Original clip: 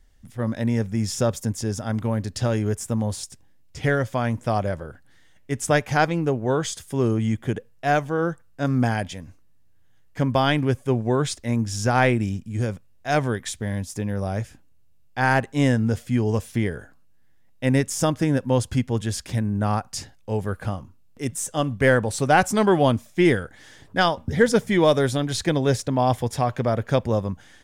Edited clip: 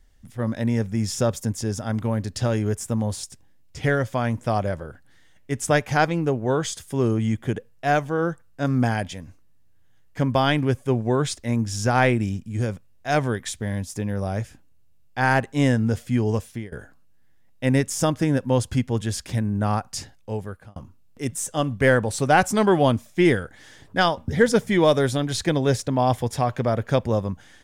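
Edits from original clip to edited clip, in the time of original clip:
16.32–16.72 fade out, to -23 dB
20.15–20.76 fade out

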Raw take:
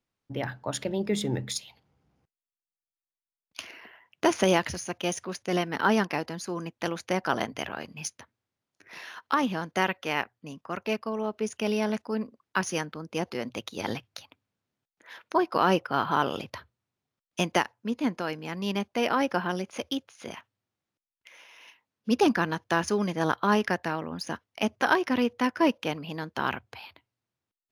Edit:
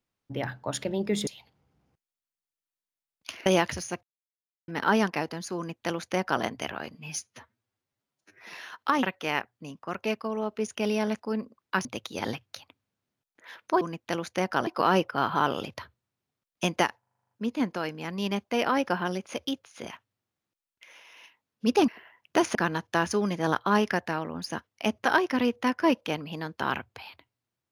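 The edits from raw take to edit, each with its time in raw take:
1.27–1.57 cut
3.76–4.43 move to 22.32
5–5.65 mute
6.54–7.4 copy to 15.43
7.91–8.97 stretch 1.5×
9.47–9.85 cut
12.67–13.47 cut
17.75 stutter 0.04 s, 9 plays

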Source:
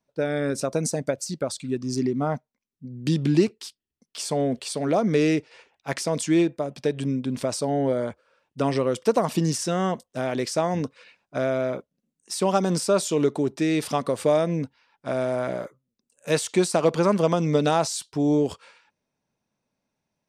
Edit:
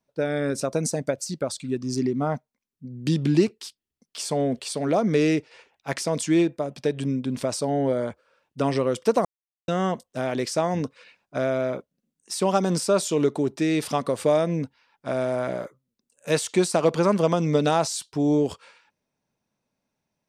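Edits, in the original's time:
9.25–9.68 mute

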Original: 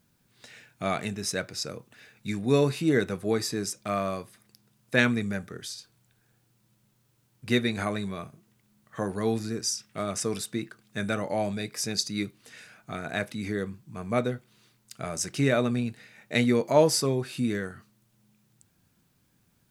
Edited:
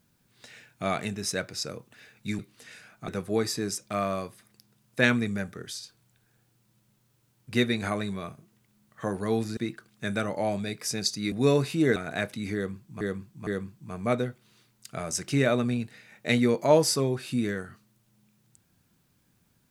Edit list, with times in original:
2.39–3.03 swap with 12.25–12.94
9.52–10.5 cut
13.53–13.99 loop, 3 plays

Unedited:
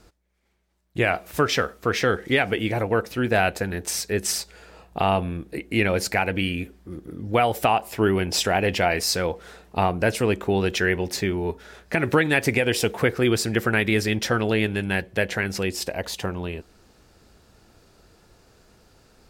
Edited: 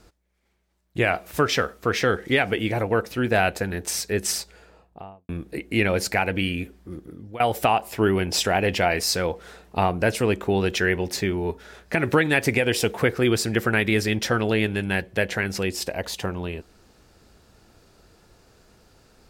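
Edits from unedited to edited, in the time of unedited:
4.28–5.29 studio fade out
6.93–7.4 fade out, to -20.5 dB

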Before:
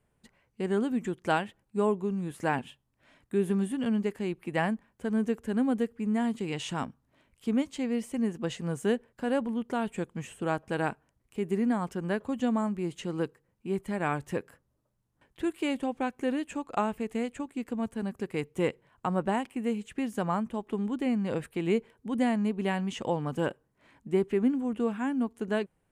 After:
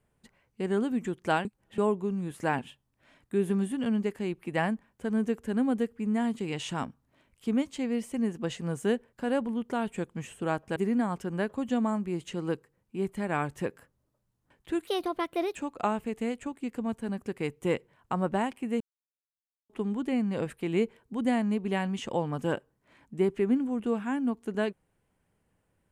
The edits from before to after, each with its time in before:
1.45–1.78 reverse
10.76–11.47 cut
15.58–16.49 speed 133%
19.74–20.63 mute

